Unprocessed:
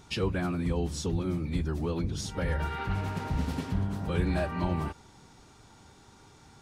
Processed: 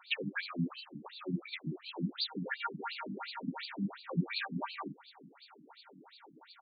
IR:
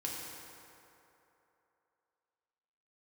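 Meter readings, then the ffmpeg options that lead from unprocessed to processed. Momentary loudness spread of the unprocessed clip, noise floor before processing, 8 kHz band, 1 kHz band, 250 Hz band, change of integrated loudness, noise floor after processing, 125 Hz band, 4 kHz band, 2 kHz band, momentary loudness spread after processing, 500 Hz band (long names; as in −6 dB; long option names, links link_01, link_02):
3 LU, −56 dBFS, below −35 dB, −6.0 dB, −6.5 dB, −7.5 dB, −61 dBFS, −12.0 dB, +2.0 dB, −0.5 dB, 21 LU, −12.5 dB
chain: -filter_complex "[0:a]acrossover=split=170|1100|1500[link_01][link_02][link_03][link_04];[link_01]asplit=2[link_05][link_06];[link_06]adelay=40,volume=-4dB[link_07];[link_05][link_07]amix=inputs=2:normalize=0[link_08];[link_02]acompressor=threshold=-43dB:ratio=6[link_09];[link_08][link_09][link_03][link_04]amix=inputs=4:normalize=0,aexciter=amount=5.2:drive=4.8:freq=4300,afftfilt=real='re*between(b*sr/1024,220*pow(3400/220,0.5+0.5*sin(2*PI*2.8*pts/sr))/1.41,220*pow(3400/220,0.5+0.5*sin(2*PI*2.8*pts/sr))*1.41)':imag='im*between(b*sr/1024,220*pow(3400/220,0.5+0.5*sin(2*PI*2.8*pts/sr))/1.41,220*pow(3400/220,0.5+0.5*sin(2*PI*2.8*pts/sr))*1.41)':win_size=1024:overlap=0.75,volume=6.5dB"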